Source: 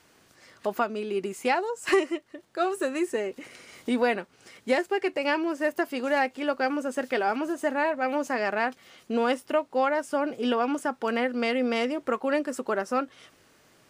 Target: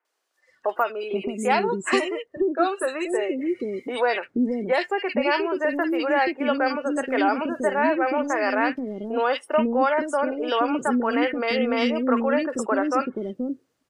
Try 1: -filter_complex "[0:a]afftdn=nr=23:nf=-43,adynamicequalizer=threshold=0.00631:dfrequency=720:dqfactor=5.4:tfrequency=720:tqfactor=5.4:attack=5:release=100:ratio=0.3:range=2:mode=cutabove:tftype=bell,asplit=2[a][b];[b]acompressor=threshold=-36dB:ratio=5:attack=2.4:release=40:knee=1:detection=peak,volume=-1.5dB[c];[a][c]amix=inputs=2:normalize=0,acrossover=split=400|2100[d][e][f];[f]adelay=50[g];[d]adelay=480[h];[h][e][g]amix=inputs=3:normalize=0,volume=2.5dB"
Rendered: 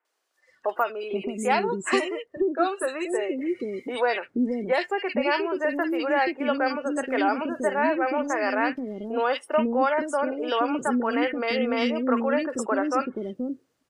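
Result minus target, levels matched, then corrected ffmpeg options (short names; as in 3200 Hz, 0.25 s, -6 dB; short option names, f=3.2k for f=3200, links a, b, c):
compressor: peak gain reduction +7.5 dB
-filter_complex "[0:a]afftdn=nr=23:nf=-43,adynamicequalizer=threshold=0.00631:dfrequency=720:dqfactor=5.4:tfrequency=720:tqfactor=5.4:attack=5:release=100:ratio=0.3:range=2:mode=cutabove:tftype=bell,asplit=2[a][b];[b]acompressor=threshold=-26.5dB:ratio=5:attack=2.4:release=40:knee=1:detection=peak,volume=-1.5dB[c];[a][c]amix=inputs=2:normalize=0,acrossover=split=400|2100[d][e][f];[f]adelay=50[g];[d]adelay=480[h];[h][e][g]amix=inputs=3:normalize=0,volume=2.5dB"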